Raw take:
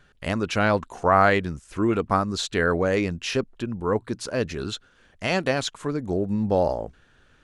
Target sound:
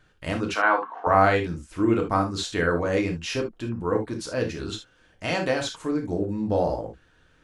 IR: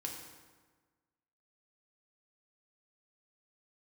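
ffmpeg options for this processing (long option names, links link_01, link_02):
-filter_complex "[0:a]asettb=1/sr,asplit=3[link_01][link_02][link_03];[link_01]atrim=end=0.544[link_04];[link_02]atrim=start=0.54:end=1.07,asetpts=PTS-STARTPTS,afade=type=in:duration=0.004:curve=qsin,afade=type=out:start_time=0.526:duration=0.004:curve=qsin,highpass=frequency=330:width=0.5412,highpass=frequency=330:width=1.3066,equalizer=frequency=370:width_type=q:width=4:gain=-9,equalizer=frequency=540:width_type=q:width=4:gain=-4,equalizer=frequency=790:width_type=q:width=4:gain=5,equalizer=frequency=1100:width_type=q:width=4:gain=9,equalizer=frequency=1600:width_type=q:width=4:gain=6,equalizer=frequency=2600:width_type=q:width=4:gain=-5,lowpass=frequency=3000:width=0.5412,lowpass=frequency=3000:width=1.3066[link_05];[link_03]atrim=start=1.066[link_06];[link_04][link_05]acrossfade=duration=0.004:curve1=hsin:curve2=qsin[link_07];[link_07][link_06]acrossfade=duration=0.004:curve1=qsin:curve2=hsin[link_08];[1:a]atrim=start_sample=2205,atrim=end_sample=3528[link_09];[link_08][link_09]afir=irnorm=-1:irlink=0"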